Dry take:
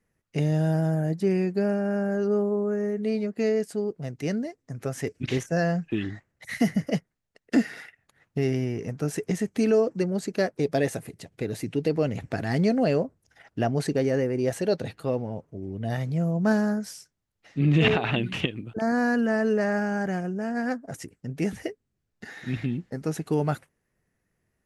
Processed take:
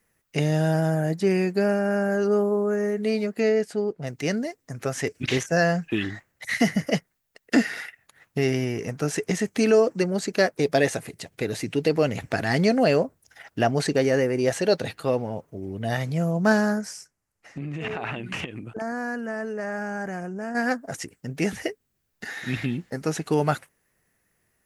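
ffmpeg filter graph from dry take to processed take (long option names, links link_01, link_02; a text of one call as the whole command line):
ffmpeg -i in.wav -filter_complex "[0:a]asettb=1/sr,asplit=3[link_01][link_02][link_03];[link_01]atrim=end=3.404[link_04];[link_02]atrim=start=3.4:end=4.07,asetpts=PTS-STARTPTS,afade=type=in:duration=0.004:curve=qsin,afade=type=out:start_time=0.666:duration=0.004:curve=qsin,aemphasis=mode=reproduction:type=50kf,bandreject=frequency=1100:width=14[link_05];[link_03]atrim=start=4.066[link_06];[link_04][link_05]acrossfade=duration=0.004:curve1=hsin:curve2=qsin[link_07];[link_07][link_06]acrossfade=duration=0.004:curve1=qsin:curve2=hsin,asettb=1/sr,asplit=3[link_08][link_09][link_10];[link_08]atrim=end=16.814[link_11];[link_09]atrim=start=16.81:end=20.55,asetpts=PTS-STARTPTS,afade=type=in:duration=0.004:curve=qsin,afade=type=out:start_time=3.736:duration=0.004:curve=qsin,lowpass=9500,equalizer=frequency=3600:width=1.7:gain=-12,acompressor=threshold=-31dB:ratio=6:attack=3.2:release=140:knee=1:detection=peak[link_12];[link_10]atrim=start=20.546[link_13];[link_11][link_12]acrossfade=duration=0.004:curve1=hsin:curve2=qsin[link_14];[link_14][link_13]acrossfade=duration=0.004:curve1=qsin:curve2=hsin,aemphasis=mode=production:type=50fm,acrossover=split=7900[link_15][link_16];[link_16]acompressor=threshold=-53dB:ratio=4:attack=1:release=60[link_17];[link_15][link_17]amix=inputs=2:normalize=0,equalizer=frequency=1500:width=0.32:gain=7" out.wav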